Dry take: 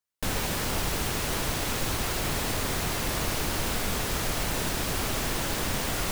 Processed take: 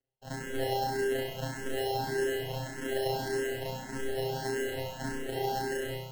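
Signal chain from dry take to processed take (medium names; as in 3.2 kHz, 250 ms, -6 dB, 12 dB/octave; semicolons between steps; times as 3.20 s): tape stop on the ending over 1.88 s; low-pass 4.3 kHz; bass shelf 260 Hz +11 dB; peak limiter -22.5 dBFS, peak gain reduction 12.5 dB; robot voice 133 Hz; LFO high-pass sine 0.86 Hz 330–1700 Hz; sample-and-hold 37×; flutter echo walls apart 5.6 m, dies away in 1.2 s; barber-pole phaser +1.7 Hz; trim +2.5 dB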